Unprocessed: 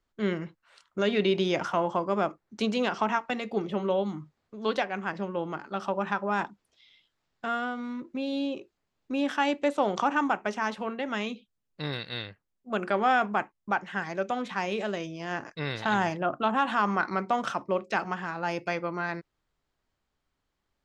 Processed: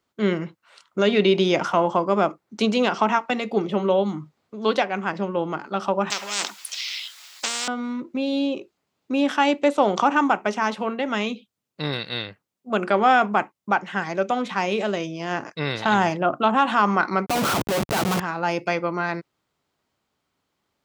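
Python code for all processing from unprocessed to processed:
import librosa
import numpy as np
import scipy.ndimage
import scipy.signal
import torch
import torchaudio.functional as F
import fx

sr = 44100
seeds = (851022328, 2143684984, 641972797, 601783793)

y = fx.chain(x, sr, fx.highpass(hz=1500.0, slope=12),
    fx.high_shelf(hz=2600.0, db=9.0),
    fx.spectral_comp(ratio=10.0), at=(6.1, 7.68))
y = fx.chain(y, sr, fx.schmitt(flips_db=-38.5),
    fx.env_flatten(amount_pct=100), at=(17.26, 18.2))
y = scipy.signal.sosfilt(scipy.signal.butter(2, 120.0, 'highpass', fs=sr, output='sos'), y)
y = fx.peak_eq(y, sr, hz=1700.0, db=-4.5, octaves=0.23)
y = F.gain(torch.from_numpy(y), 7.0).numpy()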